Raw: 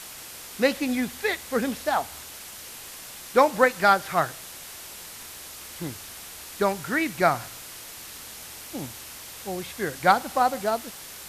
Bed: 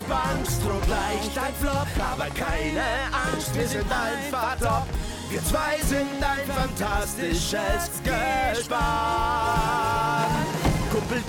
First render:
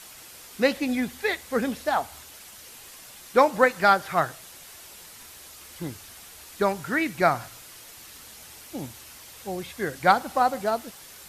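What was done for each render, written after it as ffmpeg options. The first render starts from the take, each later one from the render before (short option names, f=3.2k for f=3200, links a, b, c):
-af "afftdn=nr=6:nf=-42"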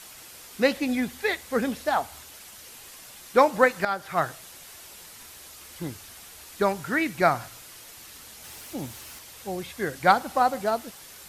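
-filter_complex "[0:a]asettb=1/sr,asplit=3[a][b][c];[a]atrim=end=8.444[d];[b]atrim=start=8.44:end=9.19,asetpts=PTS-STARTPTS,afade=t=in:d=0.004:c=qsin,afade=t=out:st=0.746:d=0.004:c=qsin,aeval=exprs='val(0)+0.5*0.00447*sgn(val(0))':c=same[e];[c]atrim=start=9.186[f];[d][e]acrossfade=d=0.004:c1=hsin:c2=qsin[g];[g][f]acrossfade=d=0.004:c1=qsin:c2=hsin,asplit=2[h][i];[h]atrim=end=3.85,asetpts=PTS-STARTPTS,afade=t=out:st=3.846:d=0.004:c=hsin:silence=0.211349[j];[i]atrim=start=3.85,asetpts=PTS-STARTPTS,afade=t=in:d=0.43:silence=0.211349[k];[j][k]concat=n=2:v=0:a=1"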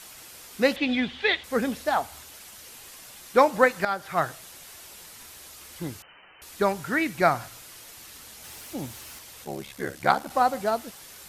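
-filter_complex "[0:a]asettb=1/sr,asplit=3[a][b][c];[a]atrim=end=0.764[d];[b]atrim=start=0.76:end=1.44,asetpts=PTS-STARTPTS,afade=t=in:d=0.004:c=qsin,afade=t=out:st=0.676:d=0.004:c=qsin,lowpass=f=3.3k:t=q:w=3.8[e];[c]atrim=start=1.436[f];[d][e]acrossfade=d=0.004:c1=hsin:c2=qsin[g];[g][f]acrossfade=d=0.004:c1=qsin:c2=hsin,asettb=1/sr,asplit=3[h][i][j];[h]atrim=end=6.024[k];[i]atrim=start=6.02:end=6.42,asetpts=PTS-STARTPTS,afade=t=in:d=0.004:c=qsin,afade=t=out:st=0.396:d=0.004:c=qsin,lowpass=f=2.6k:t=q:w=0.5098,lowpass=f=2.6k:t=q:w=0.6013,lowpass=f=2.6k:t=q:w=0.9,lowpass=f=2.6k:t=q:w=2.563,afreqshift=-3100[l];[j]atrim=start=6.416[m];[k][l]acrossfade=d=0.004:c1=hsin:c2=qsin[n];[n][m]acrossfade=d=0.004:c1=qsin:c2=hsin,asettb=1/sr,asplit=3[o][p][q];[o]atrim=end=9.444[r];[p]atrim=start=9.44:end=10.31,asetpts=PTS-STARTPTS,afade=t=in:d=0.004:c=qsin,afade=t=out:st=0.866:d=0.004:c=qsin,aeval=exprs='val(0)*sin(2*PI*35*n/s)':c=same[s];[q]atrim=start=10.306[t];[r][s]acrossfade=d=0.004:c1=hsin:c2=qsin[u];[u][t]acrossfade=d=0.004:c1=qsin:c2=hsin"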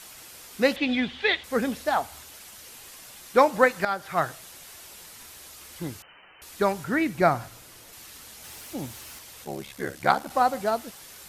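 -filter_complex "[0:a]asettb=1/sr,asplit=3[a][b][c];[a]atrim=end=6.844[d];[b]atrim=start=6.84:end=7.93,asetpts=PTS-STARTPTS,afade=t=in:d=0.004:c=qsin,afade=t=out:st=1.086:d=0.004:c=qsin,tiltshelf=f=820:g=3.5[e];[c]atrim=start=7.926[f];[d][e]acrossfade=d=0.004:c1=hsin:c2=qsin[g];[g][f]acrossfade=d=0.004:c1=qsin:c2=hsin"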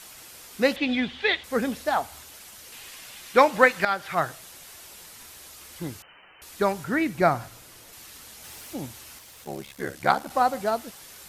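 -filter_complex "[0:a]asettb=1/sr,asplit=3[a][b][c];[a]atrim=end=2.724[d];[b]atrim=start=2.72:end=4.15,asetpts=PTS-STARTPTS,afade=t=in:d=0.004:c=qsin,afade=t=out:st=1.426:d=0.004:c=qsin,equalizer=f=2.6k:w=0.81:g=6.5[e];[c]atrim=start=4.146[f];[d][e]acrossfade=d=0.004:c1=hsin:c2=qsin[g];[g][f]acrossfade=d=0.004:c1=qsin:c2=hsin,asettb=1/sr,asplit=3[h][i][j];[h]atrim=end=8.774[k];[i]atrim=start=8.77:end=9.85,asetpts=PTS-STARTPTS,afade=t=in:d=0.004:c=qsin,afade=t=out:st=1.076:d=0.004:c=qsin,aeval=exprs='sgn(val(0))*max(abs(val(0))-0.00168,0)':c=same[l];[j]atrim=start=9.846[m];[k][l]acrossfade=d=0.004:c1=hsin:c2=qsin[n];[n][m]acrossfade=d=0.004:c1=qsin:c2=hsin"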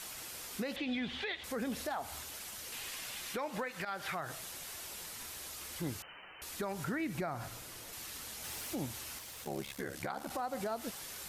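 -af "acompressor=threshold=-25dB:ratio=12,alimiter=level_in=4.5dB:limit=-24dB:level=0:latency=1:release=102,volume=-4.5dB"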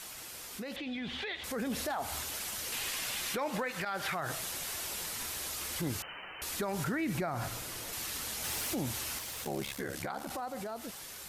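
-af "alimiter=level_in=9dB:limit=-24dB:level=0:latency=1:release=15,volume=-9dB,dynaudnorm=f=210:g=13:m=7dB"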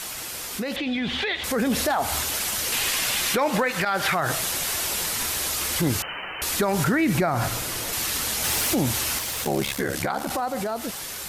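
-af "volume=12dB"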